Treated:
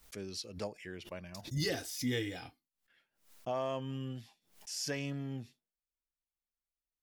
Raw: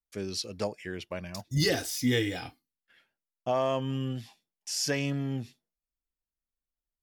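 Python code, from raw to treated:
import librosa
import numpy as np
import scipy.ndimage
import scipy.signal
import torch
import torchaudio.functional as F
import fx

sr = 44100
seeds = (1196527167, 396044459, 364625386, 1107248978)

y = fx.pre_swell(x, sr, db_per_s=140.0)
y = y * librosa.db_to_amplitude(-8.0)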